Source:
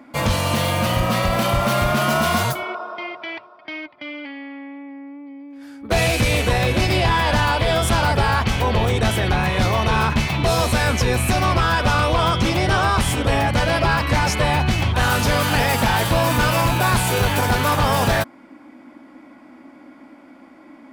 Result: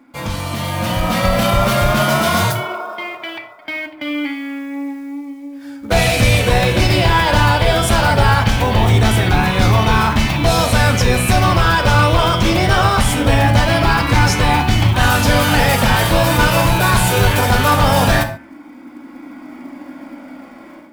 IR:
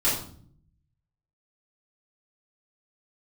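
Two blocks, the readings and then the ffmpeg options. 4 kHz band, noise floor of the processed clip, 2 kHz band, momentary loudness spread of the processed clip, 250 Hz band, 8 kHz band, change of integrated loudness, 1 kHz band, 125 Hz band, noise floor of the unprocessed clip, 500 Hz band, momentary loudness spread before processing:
+4.5 dB, −38 dBFS, +4.5 dB, 13 LU, +5.0 dB, +4.5 dB, +4.5 dB, +4.0 dB, +5.5 dB, −46 dBFS, +4.0 dB, 15 LU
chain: -filter_complex "[0:a]acrusher=bits=7:mode=log:mix=0:aa=0.000001,dynaudnorm=framelen=610:gausssize=3:maxgain=14.5dB,flanger=delay=0.8:depth=1.2:regen=-74:speed=0.21:shape=sinusoidal,bandreject=frequency=76.64:width_type=h:width=4,bandreject=frequency=153.28:width_type=h:width=4,bandreject=frequency=229.92:width_type=h:width=4,bandreject=frequency=306.56:width_type=h:width=4,bandreject=frequency=383.2:width_type=h:width=4,bandreject=frequency=459.84:width_type=h:width=4,bandreject=frequency=536.48:width_type=h:width=4,bandreject=frequency=613.12:width_type=h:width=4,bandreject=frequency=689.76:width_type=h:width=4,bandreject=frequency=766.4:width_type=h:width=4,bandreject=frequency=843.04:width_type=h:width=4,bandreject=frequency=919.68:width_type=h:width=4,bandreject=frequency=996.32:width_type=h:width=4,bandreject=frequency=1072.96:width_type=h:width=4,bandreject=frequency=1149.6:width_type=h:width=4,bandreject=frequency=1226.24:width_type=h:width=4,bandreject=frequency=1302.88:width_type=h:width=4,bandreject=frequency=1379.52:width_type=h:width=4,bandreject=frequency=1456.16:width_type=h:width=4,bandreject=frequency=1532.8:width_type=h:width=4,bandreject=frequency=1609.44:width_type=h:width=4,bandreject=frequency=1686.08:width_type=h:width=4,bandreject=frequency=1762.72:width_type=h:width=4,bandreject=frequency=1839.36:width_type=h:width=4,bandreject=frequency=1916:width_type=h:width=4,bandreject=frequency=1992.64:width_type=h:width=4,bandreject=frequency=2069.28:width_type=h:width=4,bandreject=frequency=2145.92:width_type=h:width=4,bandreject=frequency=2222.56:width_type=h:width=4,bandreject=frequency=2299.2:width_type=h:width=4,bandreject=frequency=2375.84:width_type=h:width=4,bandreject=frequency=2452.48:width_type=h:width=4,bandreject=frequency=2529.12:width_type=h:width=4,bandreject=frequency=2605.76:width_type=h:width=4,bandreject=frequency=2682.4:width_type=h:width=4,asplit=2[link_01][link_02];[1:a]atrim=start_sample=2205,atrim=end_sample=6615[link_03];[link_02][link_03]afir=irnorm=-1:irlink=0,volume=-19dB[link_04];[link_01][link_04]amix=inputs=2:normalize=0,volume=-1.5dB"

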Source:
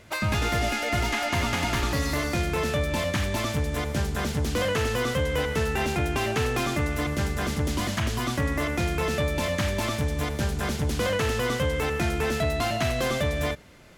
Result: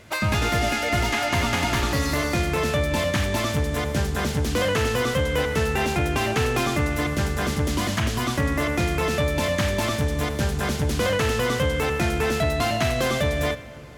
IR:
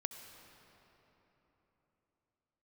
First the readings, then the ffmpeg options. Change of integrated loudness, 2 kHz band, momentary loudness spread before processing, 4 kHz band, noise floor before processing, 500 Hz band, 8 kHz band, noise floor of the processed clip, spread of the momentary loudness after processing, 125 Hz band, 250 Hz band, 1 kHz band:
+3.0 dB, +3.0 dB, 2 LU, +3.0 dB, −31 dBFS, +3.5 dB, +3.0 dB, −28 dBFS, 3 LU, +3.0 dB, +3.0 dB, +3.5 dB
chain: -filter_complex "[0:a]asplit=2[link_01][link_02];[link_02]highpass=43[link_03];[1:a]atrim=start_sample=2205,asetrate=52920,aresample=44100[link_04];[link_03][link_04]afir=irnorm=-1:irlink=0,volume=-3.5dB[link_05];[link_01][link_05]amix=inputs=2:normalize=0"

